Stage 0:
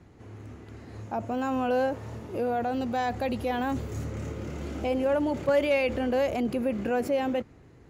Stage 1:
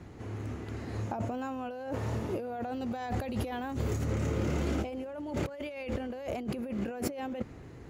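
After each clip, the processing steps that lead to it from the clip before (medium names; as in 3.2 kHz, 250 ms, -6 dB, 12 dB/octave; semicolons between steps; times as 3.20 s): compressor with a negative ratio -35 dBFS, ratio -1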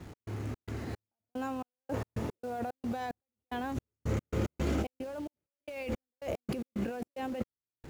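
in parallel at -6 dB: bit crusher 8-bit; on the sum: trance gate "x.xx.xx...xx..x." 111 bpm -60 dB; trim -3 dB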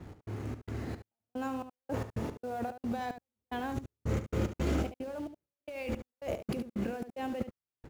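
delay 72 ms -10.5 dB; tape noise reduction on one side only decoder only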